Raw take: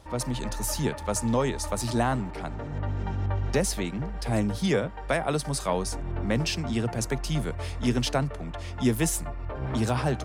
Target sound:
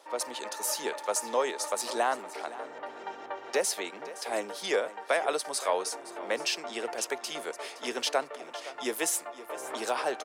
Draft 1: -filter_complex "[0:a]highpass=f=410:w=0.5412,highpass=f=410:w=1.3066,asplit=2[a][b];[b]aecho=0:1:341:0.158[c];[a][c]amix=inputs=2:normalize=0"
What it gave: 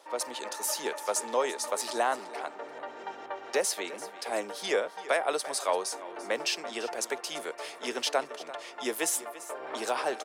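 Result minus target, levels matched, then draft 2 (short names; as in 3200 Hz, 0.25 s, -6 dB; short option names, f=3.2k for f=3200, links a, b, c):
echo 0.176 s early
-filter_complex "[0:a]highpass=f=410:w=0.5412,highpass=f=410:w=1.3066,asplit=2[a][b];[b]aecho=0:1:517:0.158[c];[a][c]amix=inputs=2:normalize=0"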